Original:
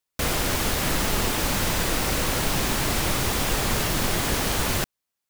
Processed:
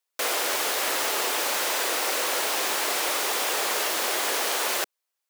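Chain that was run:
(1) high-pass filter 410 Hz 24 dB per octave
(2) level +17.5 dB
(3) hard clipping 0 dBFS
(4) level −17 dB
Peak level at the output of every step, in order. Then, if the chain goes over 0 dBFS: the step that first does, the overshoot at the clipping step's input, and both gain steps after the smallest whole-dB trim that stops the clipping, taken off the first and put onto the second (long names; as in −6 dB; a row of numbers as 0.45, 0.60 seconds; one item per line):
−13.5, +4.0, 0.0, −17.0 dBFS
step 2, 4.0 dB
step 2 +13.5 dB, step 4 −13 dB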